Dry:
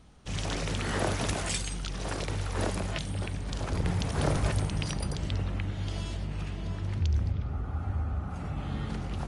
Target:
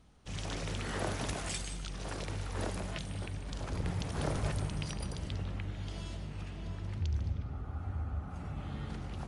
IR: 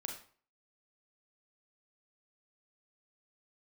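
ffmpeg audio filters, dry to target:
-filter_complex "[0:a]asplit=2[s0][s1];[1:a]atrim=start_sample=2205,adelay=150[s2];[s1][s2]afir=irnorm=-1:irlink=0,volume=0.316[s3];[s0][s3]amix=inputs=2:normalize=0,volume=0.473"

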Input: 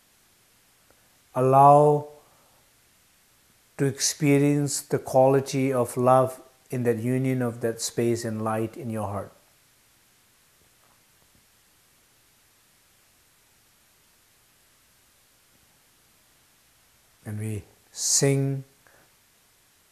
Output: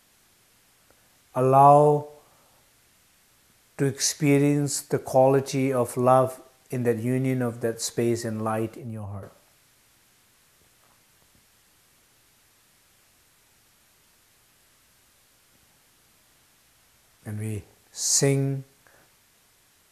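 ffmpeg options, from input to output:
-filter_complex "[0:a]asettb=1/sr,asplit=3[s0][s1][s2];[s0]atrim=end=8.784[s3];[s1]atrim=start=8.78:end=9.23,asetpts=PTS-STARTPTS,afade=t=in:d=0.004:c=qsin,afade=t=out:st=0.446:d=0.004:c=qsin,acrossover=split=180[s4][s5];[s5]acompressor=threshold=0.00891:ratio=8[s6];[s4][s6]amix=inputs=2:normalize=0[s7];[s2]atrim=start=9.226[s8];[s3][s7]acrossfade=d=0.004:c1=hsin:c2=qsin[s9];[s9][s8]acrossfade=d=0.004:c1=qsin:c2=hsin"

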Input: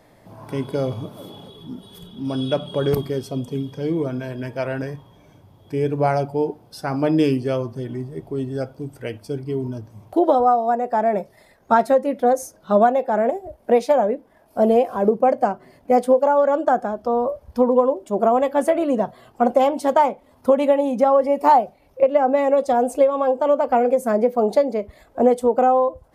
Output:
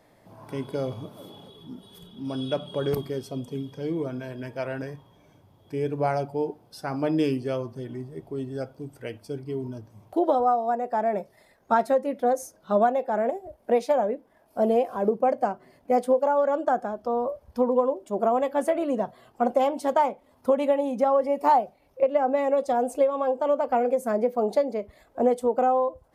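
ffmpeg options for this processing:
-af "lowshelf=f=140:g=-4,volume=0.531"

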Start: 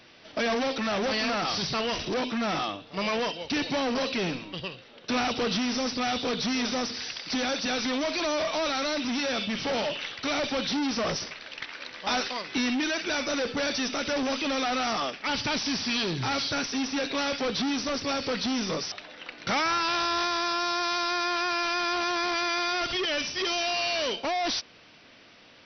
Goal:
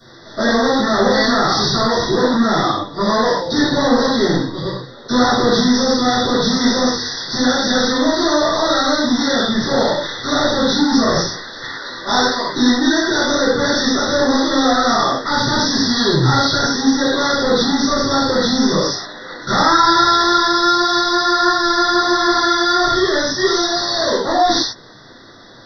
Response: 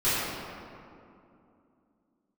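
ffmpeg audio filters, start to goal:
-filter_complex "[0:a]asuperstop=centerf=2600:order=20:qfactor=1.9[s0];[1:a]atrim=start_sample=2205,atrim=end_sample=6174[s1];[s0][s1]afir=irnorm=-1:irlink=0,volume=1.19"

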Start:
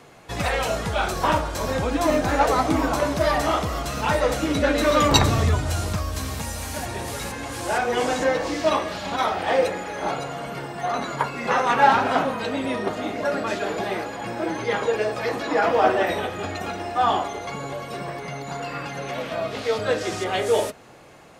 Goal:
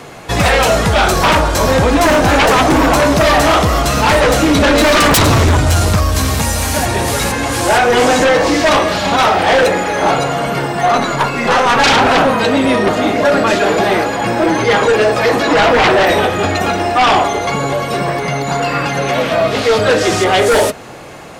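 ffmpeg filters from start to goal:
-filter_complex "[0:a]asettb=1/sr,asplit=3[s0][s1][s2];[s0]atrim=end=10.974[s3];[s1]atrim=start=10.97:end=11.84,asetpts=PTS-STARTPTS,afade=t=in:d=0.004:c=qsin,afade=t=out:st=0.866:d=0.004:c=qsin,aeval=exprs='(tanh(7.08*val(0)+0.45)-tanh(0.45))/7.08':c=same[s4];[s2]atrim=start=11.836[s5];[s3][s4]acrossfade=d=0.004:c1=hsin:c2=qsin[s6];[s6][s5]acrossfade=d=0.004:c1=qsin:c2=hsin,aeval=exprs='0.891*sin(PI/2*7.08*val(0)/0.891)':c=same,volume=0.531"

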